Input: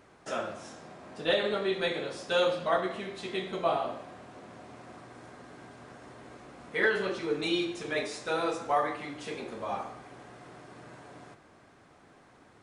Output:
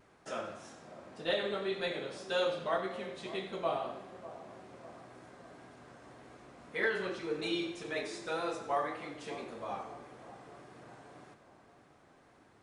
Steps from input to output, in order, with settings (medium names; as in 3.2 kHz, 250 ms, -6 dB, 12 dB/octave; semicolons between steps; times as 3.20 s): vibrato 1.8 Hz 41 cents; two-band feedback delay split 1.1 kHz, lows 597 ms, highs 91 ms, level -14 dB; trim -5.5 dB